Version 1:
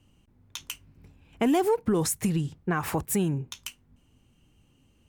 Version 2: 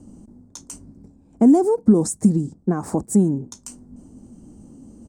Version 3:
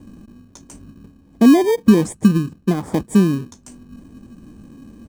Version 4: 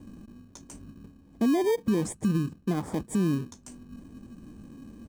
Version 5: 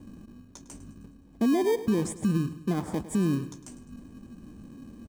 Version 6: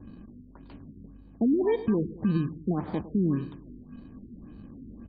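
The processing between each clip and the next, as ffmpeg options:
-af "firequalizer=gain_entry='entry(140,0);entry(210,14);entry(420,5);entry(640,5);entry(1100,-4);entry(2800,-24);entry(4600,-4);entry(8400,6);entry(12000,-14)':delay=0.05:min_phase=1,areverse,acompressor=mode=upward:threshold=0.0282:ratio=2.5,areverse"
-filter_complex "[0:a]highshelf=f=4300:g=-8.5,asplit=2[s0][s1];[s1]acrusher=samples=32:mix=1:aa=0.000001,volume=0.447[s2];[s0][s2]amix=inputs=2:normalize=0"
-af "alimiter=limit=0.224:level=0:latency=1:release=68,volume=0.562"
-af "aecho=1:1:104|208|312|416|520:0.178|0.0889|0.0445|0.0222|0.0111"
-af "aeval=exprs='val(0)+0.00224*(sin(2*PI*50*n/s)+sin(2*PI*2*50*n/s)/2+sin(2*PI*3*50*n/s)/3+sin(2*PI*4*50*n/s)/4+sin(2*PI*5*50*n/s)/5)':c=same,afftfilt=real='re*lt(b*sr/1024,450*pow(4900/450,0.5+0.5*sin(2*PI*1.8*pts/sr)))':imag='im*lt(b*sr/1024,450*pow(4900/450,0.5+0.5*sin(2*PI*1.8*pts/sr)))':win_size=1024:overlap=0.75"

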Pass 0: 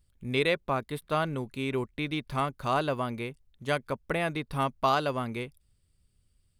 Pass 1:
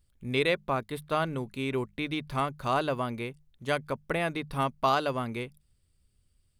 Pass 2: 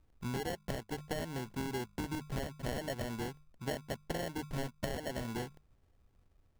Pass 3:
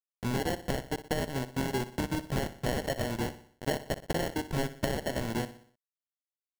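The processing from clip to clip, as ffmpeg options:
-af "bandreject=f=50:t=h:w=6,bandreject=f=100:t=h:w=6,bandreject=f=150:t=h:w=6,bandreject=f=200:t=h:w=6"
-af "acrusher=samples=36:mix=1:aa=0.000001,acompressor=threshold=0.0178:ratio=10,volume=1.12"
-af "aeval=exprs='val(0)*gte(abs(val(0)),0.0119)':c=same,aecho=1:1:61|122|183|244|305:0.2|0.0978|0.0479|0.0235|0.0115,volume=2.24"

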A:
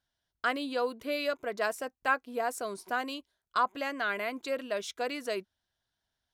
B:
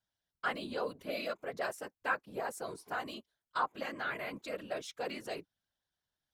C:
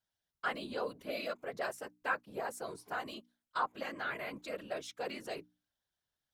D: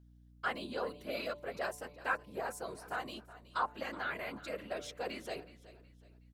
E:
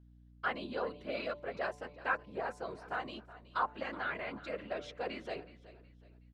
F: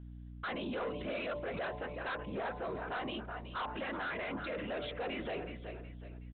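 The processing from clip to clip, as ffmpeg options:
-af "afftfilt=real='hypot(re,im)*cos(2*PI*random(0))':imag='hypot(re,im)*sin(2*PI*random(1))':win_size=512:overlap=0.75"
-af "bandreject=f=60:t=h:w=6,bandreject=f=120:t=h:w=6,bandreject=f=180:t=h:w=6,bandreject=f=240:t=h:w=6,bandreject=f=300:t=h:w=6,volume=0.891"
-filter_complex "[0:a]bandreject=f=146.5:t=h:w=4,bandreject=f=293:t=h:w=4,bandreject=f=439.5:t=h:w=4,bandreject=f=586:t=h:w=4,bandreject=f=732.5:t=h:w=4,bandreject=f=879:t=h:w=4,bandreject=f=1025.5:t=h:w=4,aeval=exprs='val(0)+0.00112*(sin(2*PI*60*n/s)+sin(2*PI*2*60*n/s)/2+sin(2*PI*3*60*n/s)/3+sin(2*PI*4*60*n/s)/4+sin(2*PI*5*60*n/s)/5)':c=same,asplit=4[s0][s1][s2][s3];[s1]adelay=370,afreqshift=-30,volume=0.141[s4];[s2]adelay=740,afreqshift=-60,volume=0.0495[s5];[s3]adelay=1110,afreqshift=-90,volume=0.0174[s6];[s0][s4][s5][s6]amix=inputs=4:normalize=0"
-af "lowpass=3600,volume=1.12"
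-af "aresample=8000,asoftclip=type=tanh:threshold=0.0158,aresample=44100,alimiter=level_in=10:limit=0.0631:level=0:latency=1:release=33,volume=0.1,bandreject=f=70.94:t=h:w=4,bandreject=f=141.88:t=h:w=4,bandreject=f=212.82:t=h:w=4,bandreject=f=283.76:t=h:w=4,bandreject=f=354.7:t=h:w=4,bandreject=f=425.64:t=h:w=4,bandreject=f=496.58:t=h:w=4,bandreject=f=567.52:t=h:w=4,bandreject=f=638.46:t=h:w=4,bandreject=f=709.4:t=h:w=4,bandreject=f=780.34:t=h:w=4,bandreject=f=851.28:t=h:w=4,bandreject=f=922.22:t=h:w=4,bandreject=f=993.16:t=h:w=4,bandreject=f=1064.1:t=h:w=4,volume=3.76"

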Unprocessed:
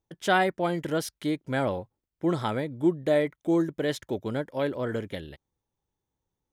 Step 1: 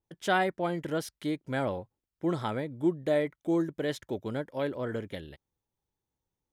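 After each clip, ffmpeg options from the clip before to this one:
-af "adynamicequalizer=threshold=0.00708:dfrequency=3000:dqfactor=0.7:tfrequency=3000:tqfactor=0.7:attack=5:release=100:ratio=0.375:range=2.5:mode=cutabove:tftype=highshelf,volume=0.668"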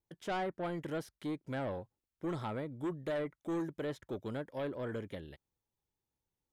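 -filter_complex "[0:a]acrossover=split=1700[s0][s1];[s0]asoftclip=type=tanh:threshold=0.0376[s2];[s1]acompressor=threshold=0.00316:ratio=6[s3];[s2][s3]amix=inputs=2:normalize=0,volume=0.668"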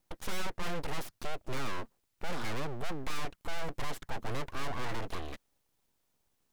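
-af "aeval=exprs='abs(val(0))':c=same,aeval=exprs='(tanh(56.2*val(0)+0.65)-tanh(0.65))/56.2':c=same,volume=7.08"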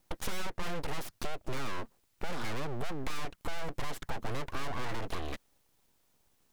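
-af "acompressor=threshold=0.0178:ratio=6,volume=2"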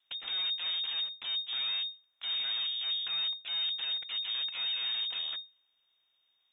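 -af "lowpass=f=3100:t=q:w=0.5098,lowpass=f=3100:t=q:w=0.6013,lowpass=f=3100:t=q:w=0.9,lowpass=f=3100:t=q:w=2.563,afreqshift=-3700,volume=0.668"

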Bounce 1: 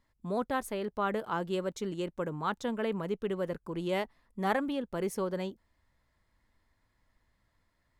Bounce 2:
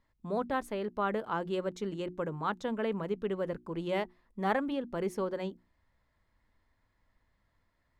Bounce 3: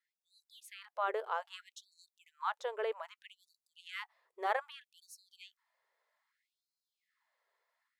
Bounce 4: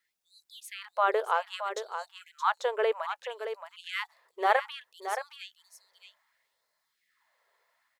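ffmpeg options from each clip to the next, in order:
-af "highshelf=f=6300:g=-11.5,bandreject=f=60:t=h:w=6,bandreject=f=120:t=h:w=6,bandreject=f=180:t=h:w=6,bandreject=f=240:t=h:w=6,bandreject=f=300:t=h:w=6,bandreject=f=360:t=h:w=6"
-af "dynaudnorm=f=290:g=3:m=1.58,afftfilt=real='re*gte(b*sr/1024,350*pow(3900/350,0.5+0.5*sin(2*PI*0.63*pts/sr)))':imag='im*gte(b*sr/1024,350*pow(3900/350,0.5+0.5*sin(2*PI*0.63*pts/sr)))':win_size=1024:overlap=0.75,volume=0.501"
-af "aecho=1:1:622:0.355,volume=2.82"

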